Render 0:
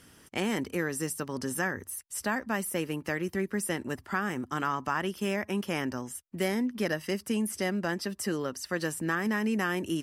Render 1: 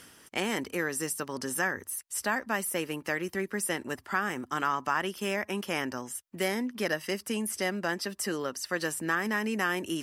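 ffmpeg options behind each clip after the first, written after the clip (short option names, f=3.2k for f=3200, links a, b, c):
-af "lowshelf=f=270:g=-10.5,areverse,acompressor=mode=upward:threshold=-41dB:ratio=2.5,areverse,volume=2.5dB"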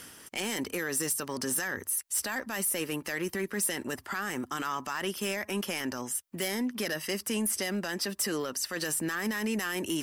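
-filter_complex "[0:a]highshelf=f=7.8k:g=5,acrossover=split=2700[a][b];[a]alimiter=level_in=3dB:limit=-24dB:level=0:latency=1:release=20,volume=-3dB[c];[c][b]amix=inputs=2:normalize=0,aeval=exprs='0.178*sin(PI/2*2.51*val(0)/0.178)':c=same,volume=-8.5dB"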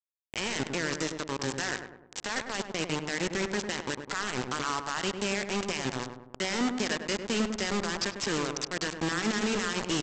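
-filter_complex "[0:a]aresample=16000,acrusher=bits=4:mix=0:aa=0.000001,aresample=44100,asplit=2[a][b];[b]adelay=101,lowpass=f=1.2k:p=1,volume=-6dB,asplit=2[c][d];[d]adelay=101,lowpass=f=1.2k:p=1,volume=0.53,asplit=2[e][f];[f]adelay=101,lowpass=f=1.2k:p=1,volume=0.53,asplit=2[g][h];[h]adelay=101,lowpass=f=1.2k:p=1,volume=0.53,asplit=2[i][j];[j]adelay=101,lowpass=f=1.2k:p=1,volume=0.53,asplit=2[k][l];[l]adelay=101,lowpass=f=1.2k:p=1,volume=0.53,asplit=2[m][n];[n]adelay=101,lowpass=f=1.2k:p=1,volume=0.53[o];[a][c][e][g][i][k][m][o]amix=inputs=8:normalize=0"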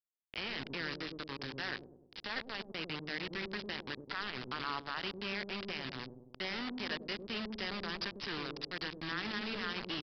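-filter_complex "[0:a]acrossover=split=630[a][b];[a]asoftclip=type=tanh:threshold=-32dB[c];[b]acrusher=bits=4:mix=0:aa=0.5[d];[c][d]amix=inputs=2:normalize=0,aresample=11025,aresample=44100,volume=-6dB"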